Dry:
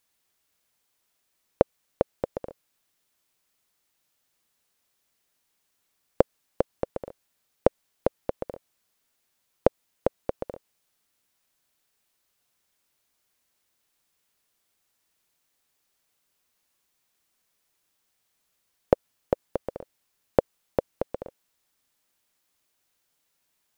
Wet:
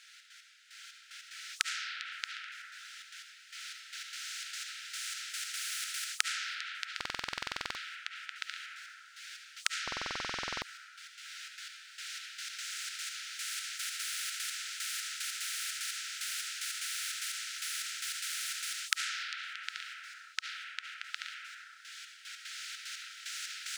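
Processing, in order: recorder AGC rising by 7.9 dB/s; step gate "xx.x...xx..x.x" 149 bpm -12 dB; brick-wall FIR high-pass 1300 Hz; air absorption 110 m; on a send at -3 dB: reverb RT60 1.5 s, pre-delay 30 ms; on the sum: stuck buffer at 6.96/9.83, samples 2048, times 16; spectral compressor 4:1; gain +1 dB

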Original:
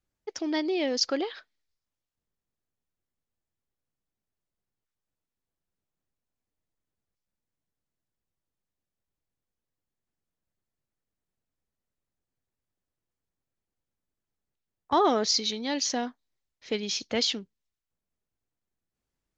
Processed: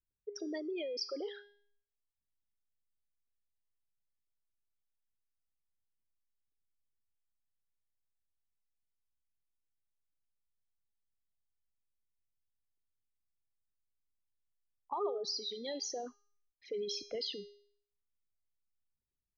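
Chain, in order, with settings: formant sharpening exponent 3; compressor 5:1, threshold -27 dBFS, peak gain reduction 8 dB; resonator 410 Hz, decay 0.57 s, mix 80%; gain +4.5 dB

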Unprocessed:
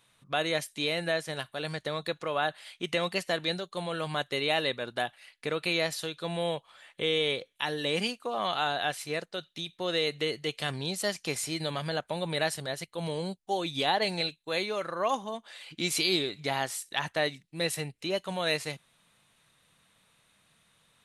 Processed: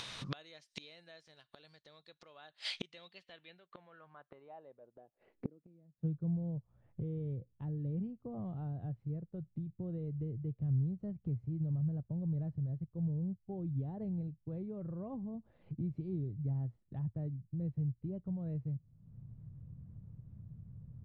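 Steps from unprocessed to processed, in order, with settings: low-pass sweep 5200 Hz -> 110 Hz, 2.88–6.4; upward compressor, threshold -39 dBFS; flipped gate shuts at -30 dBFS, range -33 dB; gain +5 dB

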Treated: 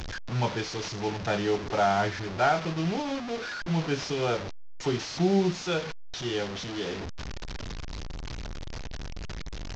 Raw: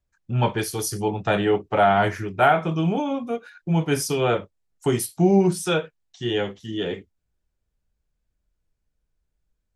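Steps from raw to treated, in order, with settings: delta modulation 32 kbps, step -23 dBFS; gain -6.5 dB

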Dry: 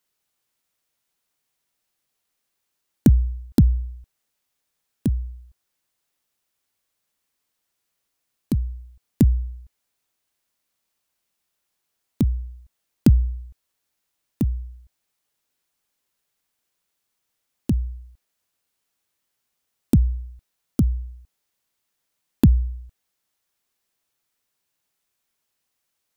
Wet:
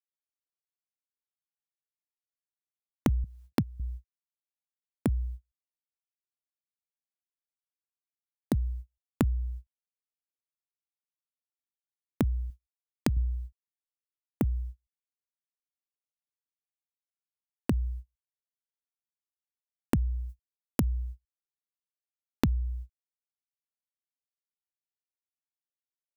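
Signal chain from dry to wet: gate -36 dBFS, range -37 dB; 12.5–13.17 low shelf 390 Hz -8 dB; compressor 6:1, threshold -24 dBFS, peak gain reduction 13.5 dB; 3.24–3.8 HPF 96 Hz 24 dB/oct; 20.29–20.81 high shelf 4900 Hz +10 dB

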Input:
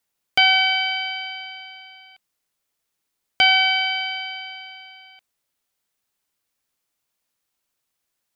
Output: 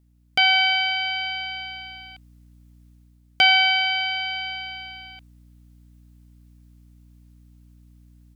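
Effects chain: hum 60 Hz, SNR 30 dB; AGC gain up to 8.5 dB; gain -3.5 dB

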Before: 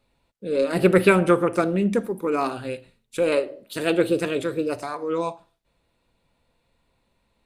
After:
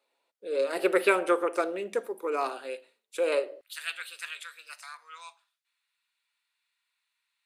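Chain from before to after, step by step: HPF 390 Hz 24 dB/oct, from 3.61 s 1400 Hz; gain -4.5 dB

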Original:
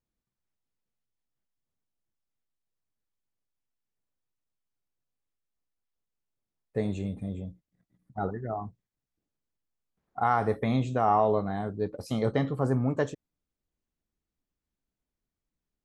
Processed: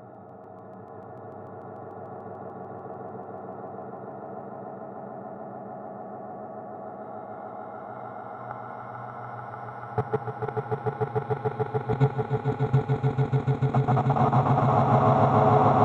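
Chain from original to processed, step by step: tape echo 0.276 s, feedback 84%, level -4 dB, low-pass 3700 Hz; Paulstretch 7.1×, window 0.50 s, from 9.07; level quantiser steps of 23 dB; bell 140 Hz +13 dB 0.31 oct; swelling echo 0.147 s, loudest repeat 8, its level -5 dB

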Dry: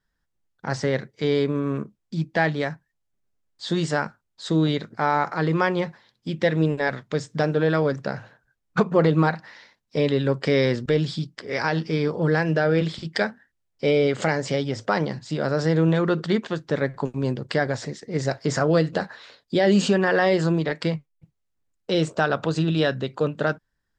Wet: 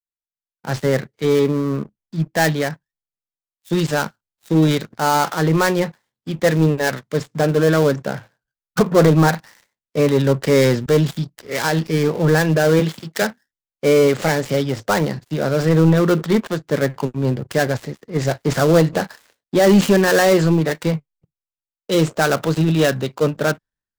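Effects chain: switching dead time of 0.11 ms; sample leveller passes 2; 12.79–13.22 HPF 140 Hz; three-band expander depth 70%

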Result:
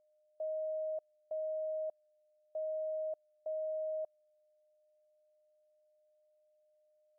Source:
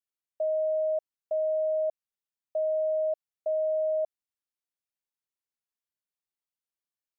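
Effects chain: bell 610 Hz -3.5 dB; whine 610 Hz -63 dBFS; gain -7 dB

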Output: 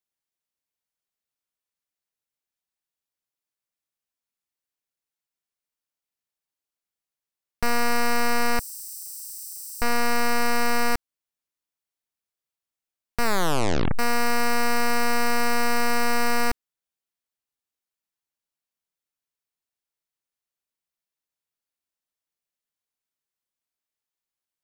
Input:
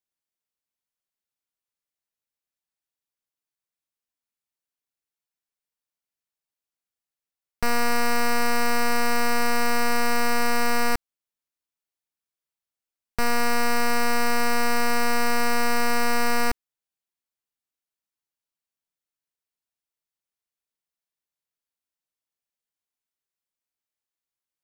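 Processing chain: 8.59–9.82 inverse Chebyshev high-pass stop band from 2200 Hz, stop band 60 dB; 13.23 tape stop 0.76 s

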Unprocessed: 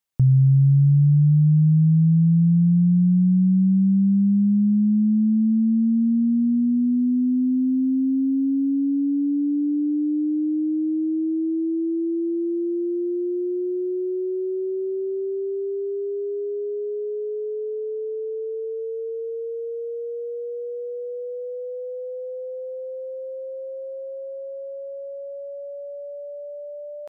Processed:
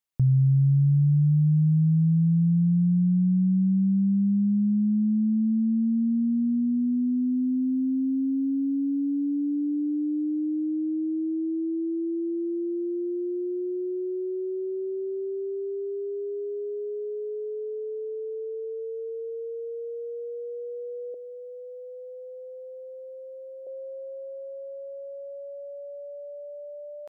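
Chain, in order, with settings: 21.14–23.67 HPF 580 Hz; gain -4.5 dB

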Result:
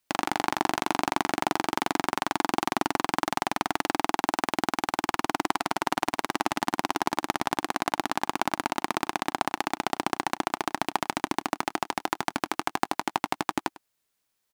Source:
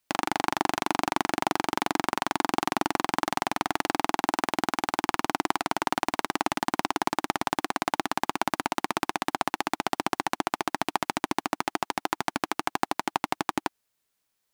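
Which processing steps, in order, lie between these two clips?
echo 0.1 s -20 dB

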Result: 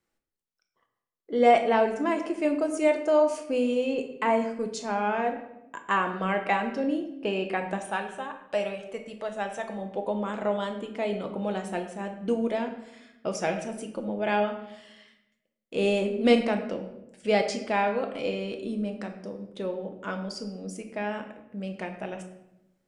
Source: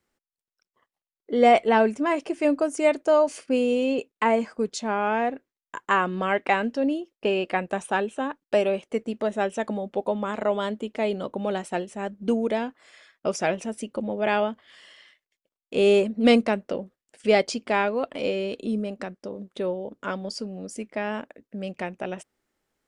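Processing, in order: 7.78–9.79 bell 290 Hz -11 dB 1.2 oct; shoebox room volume 290 m³, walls mixed, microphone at 0.68 m; gain -4.5 dB

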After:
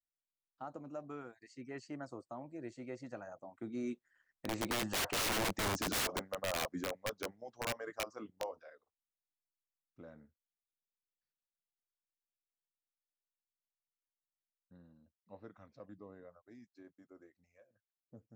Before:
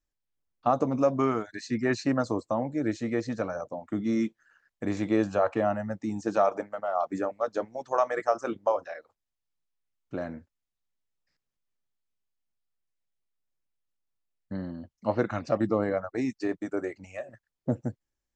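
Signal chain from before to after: Doppler pass-by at 5.54, 27 m/s, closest 7.8 m; wrapped overs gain 33 dB; gain +3.5 dB

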